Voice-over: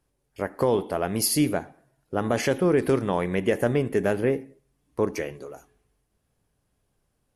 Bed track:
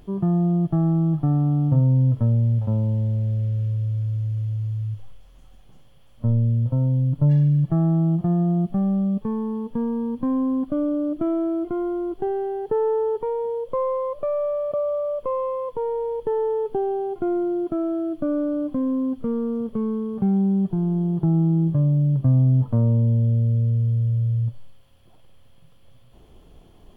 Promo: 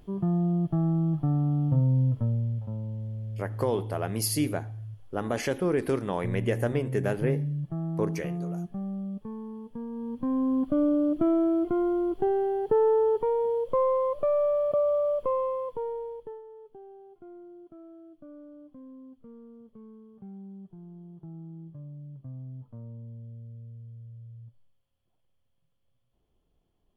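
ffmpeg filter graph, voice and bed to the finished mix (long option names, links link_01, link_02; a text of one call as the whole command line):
ffmpeg -i stem1.wav -i stem2.wav -filter_complex "[0:a]adelay=3000,volume=-5dB[link_01];[1:a]volume=6.5dB,afade=type=out:start_time=2.01:duration=0.7:silence=0.446684,afade=type=in:start_time=9.89:duration=0.95:silence=0.251189,afade=type=out:start_time=15.09:duration=1.33:silence=0.0668344[link_02];[link_01][link_02]amix=inputs=2:normalize=0" out.wav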